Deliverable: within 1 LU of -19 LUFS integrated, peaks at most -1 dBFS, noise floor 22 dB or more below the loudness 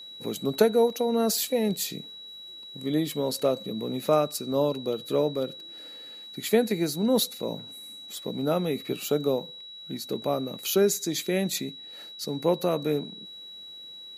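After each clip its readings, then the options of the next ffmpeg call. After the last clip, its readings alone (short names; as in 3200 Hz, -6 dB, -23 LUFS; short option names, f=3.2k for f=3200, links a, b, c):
steady tone 3900 Hz; tone level -41 dBFS; loudness -27.0 LUFS; peak -6.5 dBFS; loudness target -19.0 LUFS
-> -af "bandreject=f=3.9k:w=30"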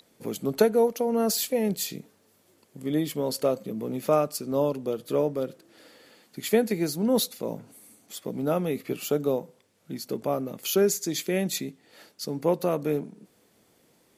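steady tone none; loudness -27.5 LUFS; peak -6.5 dBFS; loudness target -19.0 LUFS
-> -af "volume=8.5dB,alimiter=limit=-1dB:level=0:latency=1"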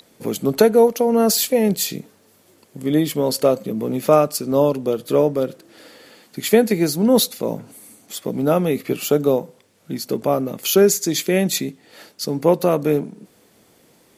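loudness -19.0 LUFS; peak -1.0 dBFS; noise floor -56 dBFS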